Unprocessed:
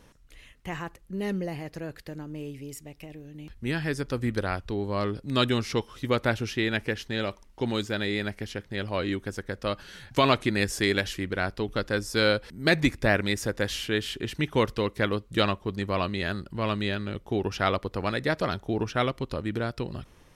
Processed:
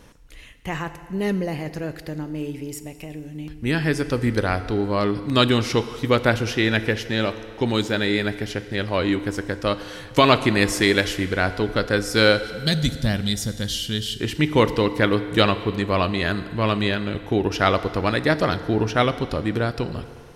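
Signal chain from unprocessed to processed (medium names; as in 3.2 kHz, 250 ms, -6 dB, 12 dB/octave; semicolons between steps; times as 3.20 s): time-frequency box 12.40–14.18 s, 250–2800 Hz -13 dB; FDN reverb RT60 2.3 s, low-frequency decay 0.7×, high-frequency decay 0.8×, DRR 11 dB; trim +6.5 dB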